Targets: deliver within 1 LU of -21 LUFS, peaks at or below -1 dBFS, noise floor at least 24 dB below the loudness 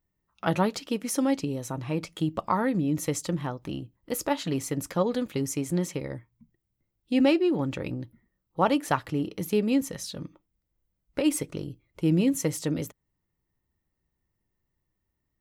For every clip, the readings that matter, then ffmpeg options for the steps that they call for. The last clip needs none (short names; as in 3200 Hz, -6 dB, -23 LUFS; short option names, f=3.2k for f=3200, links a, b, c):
loudness -28.0 LUFS; peak -9.0 dBFS; loudness target -21.0 LUFS
-> -af "volume=7dB"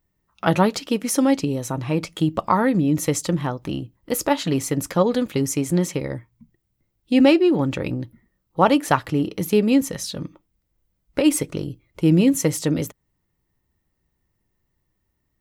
loudness -21.0 LUFS; peak -2.0 dBFS; noise floor -74 dBFS